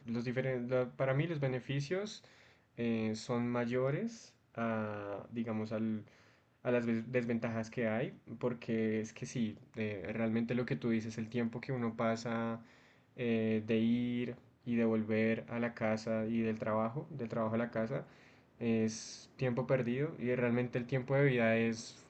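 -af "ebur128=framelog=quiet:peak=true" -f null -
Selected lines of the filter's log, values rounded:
Integrated loudness:
  I:         -36.1 LUFS
  Threshold: -46.5 LUFS
Loudness range:
  LRA:         3.2 LU
  Threshold: -56.8 LUFS
  LRA low:   -38.1 LUFS
  LRA high:  -35.0 LUFS
True peak:
  Peak:      -19.0 dBFS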